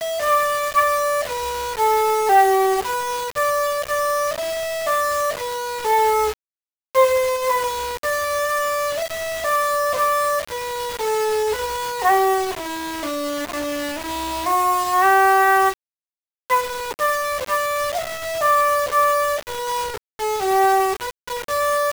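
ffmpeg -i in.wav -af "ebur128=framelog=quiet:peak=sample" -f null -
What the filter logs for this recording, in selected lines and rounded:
Integrated loudness:
  I:         -20.0 LUFS
  Threshold: -30.1 LUFS
Loudness range:
  LRA:         3.1 LU
  Threshold: -40.3 LUFS
  LRA low:   -21.8 LUFS
  LRA high:  -18.7 LUFS
Sample peak:
  Peak:       -3.8 dBFS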